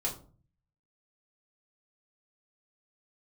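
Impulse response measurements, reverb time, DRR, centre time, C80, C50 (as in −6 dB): 0.45 s, −4.0 dB, 19 ms, 15.0 dB, 10.5 dB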